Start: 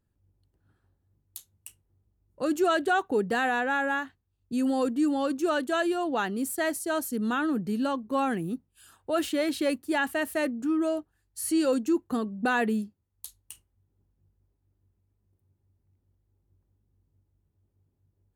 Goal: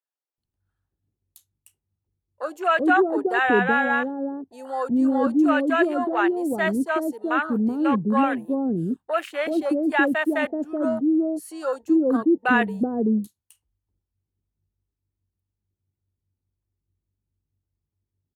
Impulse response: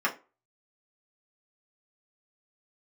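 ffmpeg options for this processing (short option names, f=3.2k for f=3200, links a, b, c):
-filter_complex "[0:a]afwtdn=0.0178,acrossover=split=550[a][b];[a]adelay=380[c];[c][b]amix=inputs=2:normalize=0,volume=7dB"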